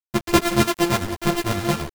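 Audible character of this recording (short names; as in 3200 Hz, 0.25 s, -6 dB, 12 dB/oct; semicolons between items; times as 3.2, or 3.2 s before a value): a buzz of ramps at a fixed pitch in blocks of 128 samples; chopped level 8.9 Hz, depth 60%, duty 50%; a quantiser's noise floor 6-bit, dither none; a shimmering, thickened sound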